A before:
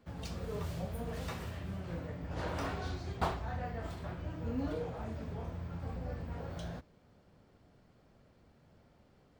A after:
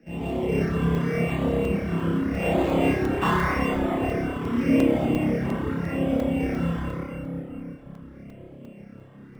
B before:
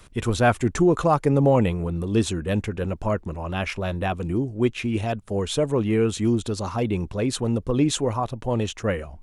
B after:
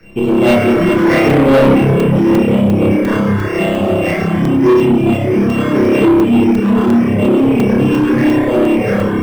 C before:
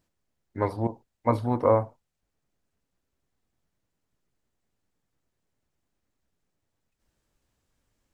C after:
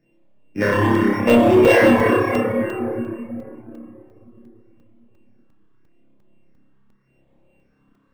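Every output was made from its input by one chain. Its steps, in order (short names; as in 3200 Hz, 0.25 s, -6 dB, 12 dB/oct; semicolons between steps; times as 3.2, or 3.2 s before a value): sample sorter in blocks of 16 samples; on a send: flutter echo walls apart 5.1 m, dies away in 1.5 s; on the sum: phaser stages 6, 0.85 Hz, lowest notch 580–1800 Hz; shoebox room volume 140 m³, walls hard, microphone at 0.69 m; reverb removal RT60 0.75 s; in parallel at -1 dB: compressor, threshold -22 dBFS; on the sum: careless resampling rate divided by 4×, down none, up hold; three-band isolator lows -15 dB, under 170 Hz, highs -18 dB, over 2300 Hz; soft clip -12 dBFS; crackling interface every 0.35 s, samples 128, zero, from 0.95; gain +6.5 dB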